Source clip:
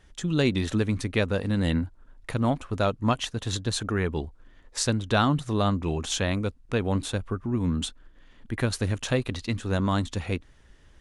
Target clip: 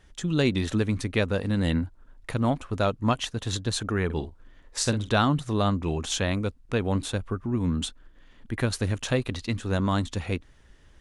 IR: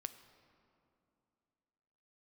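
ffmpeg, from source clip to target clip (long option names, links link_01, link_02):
-filter_complex "[0:a]asettb=1/sr,asplit=3[link_01][link_02][link_03];[link_01]atrim=end=4.054[link_04];[link_02]atrim=start=4.05:end=5.09,asetpts=PTS-STARTPTS,afade=type=in:duration=0.004:curve=qsin,afade=type=out:start_time=1.036:duration=0.004:curve=qsin,asplit=2[link_05][link_06];[link_06]adelay=48,volume=-11dB[link_07];[link_05][link_07]amix=inputs=2:normalize=0,atrim=end_sample=45864[link_08];[link_03]atrim=start=5.086[link_09];[link_04][link_08]acrossfade=duration=0.004:curve1=hsin:curve2=qsin[link_10];[link_10][link_09]acrossfade=duration=0.004:curve1=qsin:curve2=hsin"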